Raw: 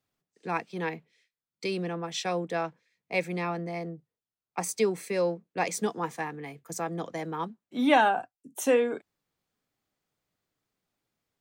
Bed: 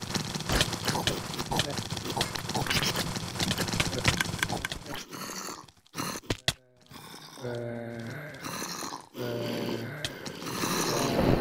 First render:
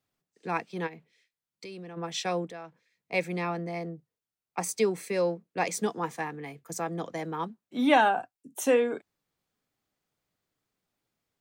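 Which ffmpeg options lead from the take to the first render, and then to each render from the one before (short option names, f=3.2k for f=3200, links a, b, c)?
-filter_complex "[0:a]asplit=3[a][b][c];[a]afade=t=out:st=0.86:d=0.02[d];[b]acompressor=threshold=-43dB:ratio=3:attack=3.2:release=140:knee=1:detection=peak,afade=t=in:st=0.86:d=0.02,afade=t=out:st=1.96:d=0.02[e];[c]afade=t=in:st=1.96:d=0.02[f];[d][e][f]amix=inputs=3:normalize=0,asettb=1/sr,asplit=3[g][h][i];[g]atrim=end=2.474[j];[h]atrim=start=2.47:end=3.13,asetpts=PTS-STARTPTS,afade=t=in:d=0.004:c=qsin,afade=t=out:st=0.656:d=0.004:c=qsin,acompressor=threshold=-48dB:ratio=2:attack=3.2:release=140:knee=1:detection=peak[k];[i]atrim=start=3.126[l];[j][k]acrossfade=d=0.004:c1=hsin:c2=qsin[m];[m][l]acrossfade=d=0.004:c1=qsin:c2=hsin"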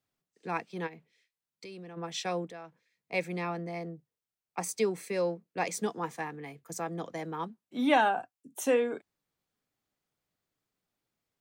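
-af "volume=-3dB"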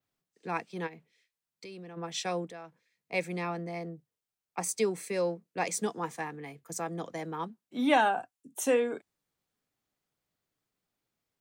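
-af "adynamicequalizer=threshold=0.00251:dfrequency=8500:dqfactor=1.1:tfrequency=8500:tqfactor=1.1:attack=5:release=100:ratio=0.375:range=2.5:mode=boostabove:tftype=bell"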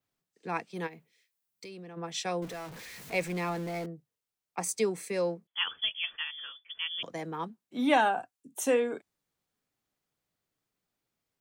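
-filter_complex "[0:a]asettb=1/sr,asplit=3[a][b][c];[a]atrim=end=0.744[d];[b]atrim=start=0.74:end=1.69,asetpts=PTS-STARTPTS,afade=t=in:d=0.004:c=qsin,afade=t=out:st=0.946:d=0.004:c=qsin,highshelf=f=10k:g=11.5[e];[c]atrim=start=1.686[f];[d][e]acrossfade=d=0.004:c1=hsin:c2=qsin[g];[g][f]acrossfade=d=0.004:c1=qsin:c2=hsin,asettb=1/sr,asplit=3[h][i][j];[h]atrim=end=2.424[k];[i]atrim=start=2.42:end=3.86,asetpts=PTS-STARTPTS,afade=t=in:d=0.004:c=qsin,afade=t=out:st=1.436:d=0.004:c=qsin,aeval=exprs='val(0)+0.5*0.01*sgn(val(0))':c=same[l];[j]atrim=start=3.856[m];[k][l]acrossfade=d=0.004:c1=hsin:c2=qsin[n];[n][m]acrossfade=d=0.004:c1=qsin:c2=hsin,asettb=1/sr,asplit=3[o][p][q];[o]atrim=end=5.474[r];[p]atrim=start=5.47:end=7.03,asetpts=PTS-STARTPTS,afade=t=in:d=0.004:c=qsin,afade=t=out:st=1.556:d=0.004:c=qsin,lowpass=f=3.1k:t=q:w=0.5098,lowpass=f=3.1k:t=q:w=0.6013,lowpass=f=3.1k:t=q:w=0.9,lowpass=f=3.1k:t=q:w=2.563,afreqshift=-3600[s];[q]atrim=start=7.026[t];[r][s]acrossfade=d=0.004:c1=hsin:c2=qsin[u];[u][t]acrossfade=d=0.004:c1=qsin:c2=hsin"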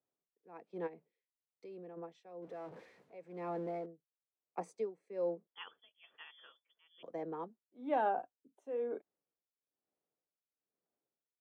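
-af "bandpass=f=480:t=q:w=1.3:csg=0,tremolo=f=1.1:d=0.89"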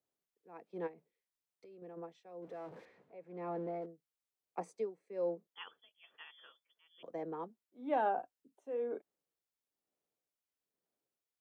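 -filter_complex "[0:a]asettb=1/sr,asplit=3[a][b][c];[a]atrim=end=0.914[d];[b]atrim=start=0.91:end=1.82,asetpts=PTS-STARTPTS,afade=t=in:d=0.004:c=qsin,afade=t=out:st=0.906:d=0.004:c=qsin,acompressor=threshold=-53dB:ratio=6:attack=3.2:release=140:knee=1:detection=peak[e];[c]atrim=start=1.816[f];[d][e]acrossfade=d=0.004:c1=hsin:c2=qsin[g];[g][f]acrossfade=d=0.004:c1=qsin:c2=hsin,asettb=1/sr,asplit=3[h][i][j];[h]atrim=end=2.854[k];[i]atrim=start=2.85:end=3.82,asetpts=PTS-STARTPTS,afade=t=in:d=0.004:c=qsin,afade=t=out:st=0.966:d=0.004:c=qsin,aemphasis=mode=reproduction:type=75kf[l];[j]atrim=start=3.816[m];[k][l]acrossfade=d=0.004:c1=hsin:c2=qsin[n];[n][m]acrossfade=d=0.004:c1=qsin:c2=hsin"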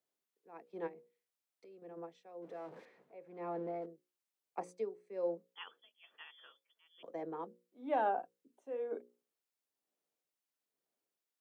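-af "highpass=170,bandreject=f=60:t=h:w=6,bandreject=f=120:t=h:w=6,bandreject=f=180:t=h:w=6,bandreject=f=240:t=h:w=6,bandreject=f=300:t=h:w=6,bandreject=f=360:t=h:w=6,bandreject=f=420:t=h:w=6,bandreject=f=480:t=h:w=6,bandreject=f=540:t=h:w=6"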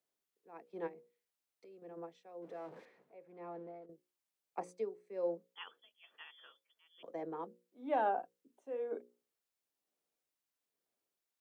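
-filter_complex "[0:a]asplit=2[a][b];[a]atrim=end=3.89,asetpts=PTS-STARTPTS,afade=t=out:st=2.71:d=1.18:silence=0.237137[c];[b]atrim=start=3.89,asetpts=PTS-STARTPTS,afade=t=in:d=0.004:c=hsin:silence=0.237137[d];[c][d]concat=n=2:v=0:a=1"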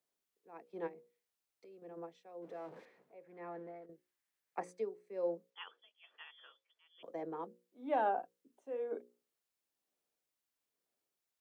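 -filter_complex "[0:a]asettb=1/sr,asplit=3[a][b][c];[a]atrim=end=3.234[d];[b]atrim=start=3.23:end=4.8,asetpts=PTS-STARTPTS,afade=t=in:d=0.004:c=qsin,afade=t=out:st=1.566:d=0.004:c=qsin,equalizer=f=1.8k:w=2.5:g=9[e];[c]atrim=start=4.796[f];[d][e]acrossfade=d=0.004:c1=hsin:c2=qsin[g];[g][f]acrossfade=d=0.004:c1=qsin:c2=hsin,asettb=1/sr,asplit=3[h][i][j];[h]atrim=end=5.504[k];[i]atrim=start=5.5:end=7.03,asetpts=PTS-STARTPTS,afade=t=in:d=0.004:c=qsin,afade=t=out:st=1.526:d=0.004:c=qsin,highpass=340,lowpass=5.8k[l];[j]atrim=start=7.026[m];[k][l]acrossfade=d=0.004:c1=hsin:c2=qsin[n];[n][m]acrossfade=d=0.004:c1=qsin:c2=hsin"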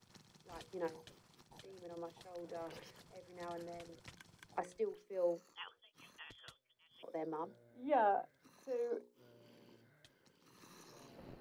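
-filter_complex "[1:a]volume=-31dB[a];[0:a][a]amix=inputs=2:normalize=0"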